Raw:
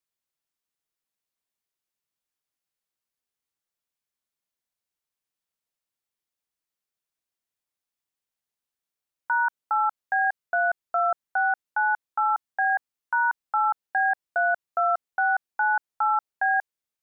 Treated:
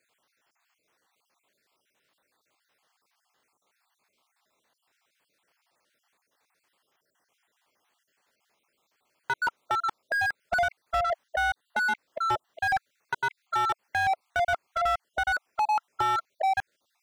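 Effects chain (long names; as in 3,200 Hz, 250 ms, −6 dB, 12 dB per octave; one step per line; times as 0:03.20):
time-frequency cells dropped at random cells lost 46%
downward compressor 4 to 1, threshold −27 dBFS, peak gain reduction 6.5 dB
mid-hump overdrive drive 36 dB, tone 1,100 Hz, clips at −16 dBFS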